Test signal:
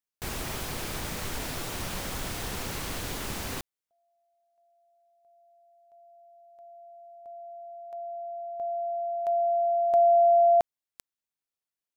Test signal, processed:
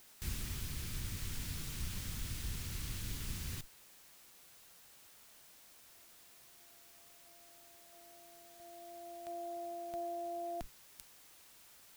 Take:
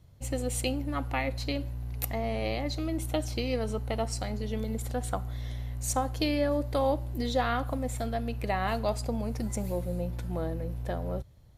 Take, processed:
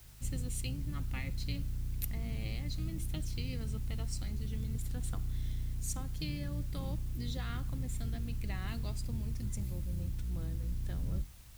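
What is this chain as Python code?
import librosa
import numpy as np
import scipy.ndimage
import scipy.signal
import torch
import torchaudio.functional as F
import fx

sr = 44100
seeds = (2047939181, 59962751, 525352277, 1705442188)

y = fx.octave_divider(x, sr, octaves=1, level_db=1.0)
y = fx.tone_stack(y, sr, knobs='6-0-2')
y = fx.rider(y, sr, range_db=5, speed_s=0.5)
y = fx.dmg_noise_colour(y, sr, seeds[0], colour='white', level_db=-68.0)
y = F.gain(torch.from_numpy(y), 7.5).numpy()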